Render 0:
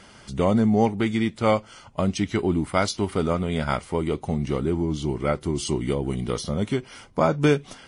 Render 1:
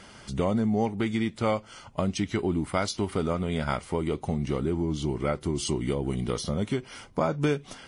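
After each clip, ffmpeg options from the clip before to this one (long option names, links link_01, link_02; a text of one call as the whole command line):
ffmpeg -i in.wav -af "acompressor=threshold=-26dB:ratio=2" out.wav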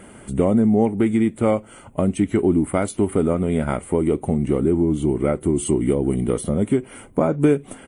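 ffmpeg -i in.wav -af "firequalizer=gain_entry='entry(140,0);entry(270,6);entry(970,-4);entry(2300,-4);entry(5100,-22);entry(8200,5)':delay=0.05:min_phase=1,volume=5.5dB" out.wav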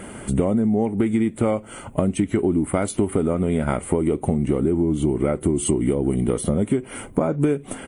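ffmpeg -i in.wav -af "acompressor=threshold=-24dB:ratio=5,volume=6.5dB" out.wav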